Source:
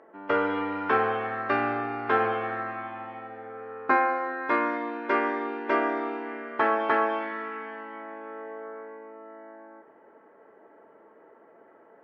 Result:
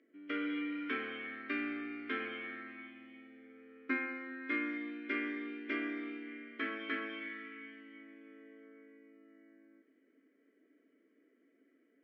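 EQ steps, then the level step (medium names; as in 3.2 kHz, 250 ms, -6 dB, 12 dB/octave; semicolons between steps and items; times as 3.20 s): vowel filter i; dynamic bell 1.3 kHz, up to +8 dB, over -60 dBFS, Q 0.93; tone controls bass -5 dB, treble +13 dB; +1.0 dB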